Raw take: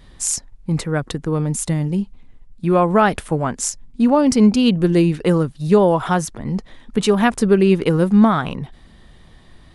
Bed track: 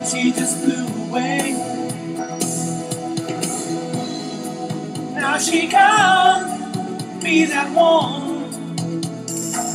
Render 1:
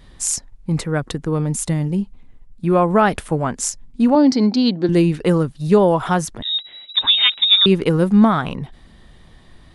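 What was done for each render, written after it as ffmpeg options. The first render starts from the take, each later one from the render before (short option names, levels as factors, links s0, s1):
-filter_complex "[0:a]asettb=1/sr,asplit=3[s0][s1][s2];[s0]atrim=end=1.884[s3];[s1]atrim=start=1.88:end=3.07,asetpts=PTS-STARTPTS,afade=t=in:d=0.004:c=qsin,afade=t=out:st=1.186:d=0.004:c=qsin,equalizer=f=4100:t=o:w=1.9:g=-2.5[s4];[s2]atrim=start=3.066[s5];[s3][s4]acrossfade=d=0.004:c1=hsin:c2=qsin[s6];[s6][s5]acrossfade=d=0.004:c1=qsin:c2=hsin,asettb=1/sr,asplit=3[s7][s8][s9];[s7]atrim=end=4.154[s10];[s8]atrim=start=4.15:end=4.89,asetpts=PTS-STARTPTS,afade=t=in:d=0.004:c=qsin,afade=t=out:st=0.736:d=0.004:c=qsin,highpass=260,equalizer=f=290:t=q:w=4:g=7,equalizer=f=460:t=q:w=4:g=-5,equalizer=f=790:t=q:w=4:g=3,equalizer=f=1200:t=q:w=4:g=-7,equalizer=f=2700:t=q:w=4:g=-10,equalizer=f=4300:t=q:w=4:g=9,lowpass=f=5300:w=0.5412,lowpass=f=5300:w=1.3066[s11];[s9]atrim=start=4.886[s12];[s10][s11]acrossfade=d=0.004:c1=hsin:c2=qsin[s13];[s13][s12]acrossfade=d=0.004:c1=qsin:c2=hsin,asettb=1/sr,asplit=3[s14][s15][s16];[s14]atrim=end=6.424[s17];[s15]atrim=start=6.42:end=7.66,asetpts=PTS-STARTPTS,afade=t=in:d=0.004:c=qsin,afade=t=out:st=1.236:d=0.004:c=qsin,lowpass=f=3300:t=q:w=0.5098,lowpass=f=3300:t=q:w=0.6013,lowpass=f=3300:t=q:w=0.9,lowpass=f=3300:t=q:w=2.563,afreqshift=-3900[s18];[s16]atrim=start=7.656[s19];[s17][s18]acrossfade=d=0.004:c1=hsin:c2=qsin[s20];[s20][s19]acrossfade=d=0.004:c1=qsin:c2=hsin"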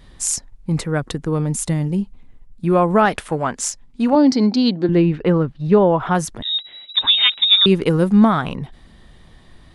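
-filter_complex "[0:a]asettb=1/sr,asplit=3[s0][s1][s2];[s0]atrim=end=3.054[s3];[s1]atrim=start=3.05:end=4.13,asetpts=PTS-STARTPTS,afade=t=in:d=0.004:c=qsin,afade=t=out:st=1.076:d=0.004:c=qsin,asplit=2[s4][s5];[s5]highpass=f=720:p=1,volume=2.24,asoftclip=type=tanh:threshold=0.562[s6];[s4][s6]amix=inputs=2:normalize=0,lowpass=f=5300:p=1,volume=0.501[s7];[s2]atrim=start=4.126[s8];[s3][s7]acrossfade=d=0.004:c1=hsin:c2=qsin[s9];[s9][s8]acrossfade=d=0.004:c1=qsin:c2=hsin,asettb=1/sr,asplit=3[s10][s11][s12];[s10]atrim=end=4.844[s13];[s11]atrim=start=4.84:end=6.15,asetpts=PTS-STARTPTS,afade=t=in:d=0.004:c=qsin,afade=t=out:st=1.306:d=0.004:c=qsin,lowpass=2700[s14];[s12]atrim=start=6.146[s15];[s13][s14]acrossfade=d=0.004:c1=hsin:c2=qsin[s16];[s16][s15]acrossfade=d=0.004:c1=qsin:c2=hsin"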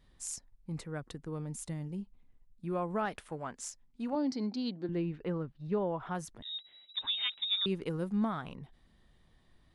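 -af "volume=0.112"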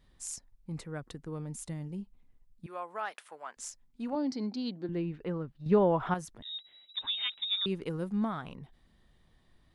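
-filter_complex "[0:a]asettb=1/sr,asplit=3[s0][s1][s2];[s0]atrim=end=2.664[s3];[s1]atrim=start=2.66:end=3.57,asetpts=PTS-STARTPTS,afade=t=in:d=0.004:c=qsin,afade=t=out:st=0.906:d=0.004:c=qsin,highpass=750[s4];[s2]atrim=start=3.566[s5];[s3][s4]acrossfade=d=0.004:c1=hsin:c2=qsin[s6];[s6][s5]acrossfade=d=0.004:c1=qsin:c2=hsin,asplit=3[s7][s8][s9];[s7]atrim=end=5.662[s10];[s8]atrim=start=5.658:end=6.142,asetpts=PTS-STARTPTS,volume=2.51[s11];[s9]atrim=start=6.138[s12];[s10][s11]acrossfade=d=0.004:c1=hsin:c2=hsin[s13];[s13][s12]acrossfade=d=0.004:c1=hsin:c2=hsin"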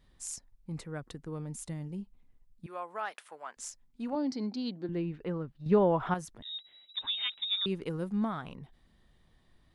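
-af anull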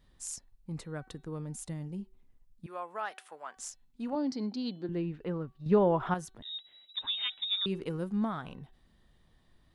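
-af "equalizer=f=2200:t=o:w=0.25:g=-2.5,bandreject=f=378.8:t=h:w=4,bandreject=f=757.6:t=h:w=4,bandreject=f=1136.4:t=h:w=4,bandreject=f=1515.2:t=h:w=4,bandreject=f=1894:t=h:w=4,bandreject=f=2272.8:t=h:w=4,bandreject=f=2651.6:t=h:w=4,bandreject=f=3030.4:t=h:w=4,bandreject=f=3409.2:t=h:w=4,bandreject=f=3788:t=h:w=4,bandreject=f=4166.8:t=h:w=4"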